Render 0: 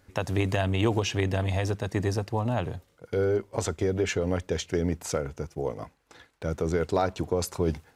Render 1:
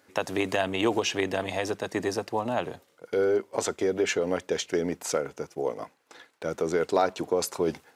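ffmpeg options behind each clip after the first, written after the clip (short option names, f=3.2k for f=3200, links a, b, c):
-af "highpass=280,volume=2.5dB"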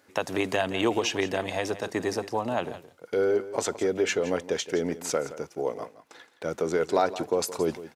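-af "aecho=1:1:169:0.178"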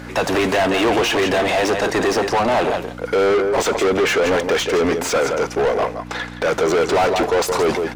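-filter_complex "[0:a]aeval=exprs='val(0)+0.00562*(sin(2*PI*60*n/s)+sin(2*PI*2*60*n/s)/2+sin(2*PI*3*60*n/s)/3+sin(2*PI*4*60*n/s)/4+sin(2*PI*5*60*n/s)/5)':c=same,asplit=2[a][b];[b]highpass=f=720:p=1,volume=34dB,asoftclip=type=tanh:threshold=-9dB[c];[a][c]amix=inputs=2:normalize=0,lowpass=f=2.4k:p=1,volume=-6dB"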